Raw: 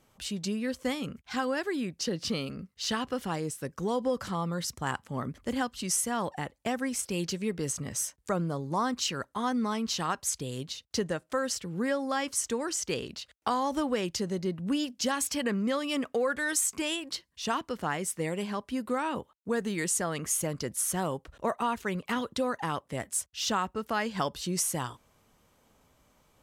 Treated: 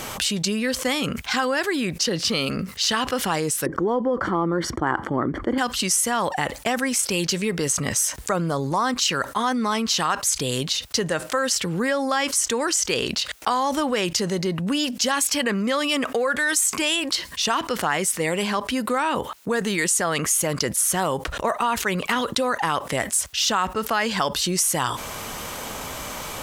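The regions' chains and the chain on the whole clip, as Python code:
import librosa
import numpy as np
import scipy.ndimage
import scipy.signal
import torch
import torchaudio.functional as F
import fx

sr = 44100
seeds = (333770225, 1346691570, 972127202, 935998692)

y = fx.chain(x, sr, fx.savgol(points=41),
    fx.peak_eq(hz=330.0, db=15.0, octaves=0.47), at=(3.66, 5.58))
y = fx.low_shelf(y, sr, hz=480.0, db=-9.5)
y = fx.transient(y, sr, attack_db=3, sustain_db=-1)
y = fx.env_flatten(y, sr, amount_pct=70)
y = F.gain(torch.from_numpy(y), 4.0).numpy()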